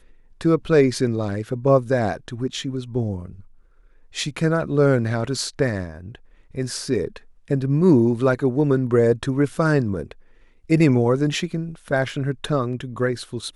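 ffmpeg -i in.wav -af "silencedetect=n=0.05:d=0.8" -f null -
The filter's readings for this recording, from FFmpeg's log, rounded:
silence_start: 3.25
silence_end: 4.16 | silence_duration: 0.91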